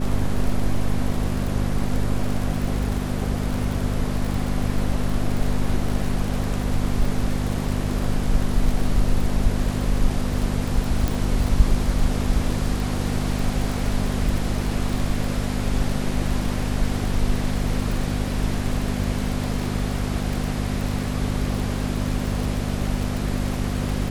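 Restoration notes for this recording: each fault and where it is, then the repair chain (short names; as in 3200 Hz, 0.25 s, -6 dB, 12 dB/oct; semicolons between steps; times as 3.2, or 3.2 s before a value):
crackle 39/s -25 dBFS
hum 50 Hz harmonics 5 -26 dBFS
11.08 pop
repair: de-click; de-hum 50 Hz, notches 5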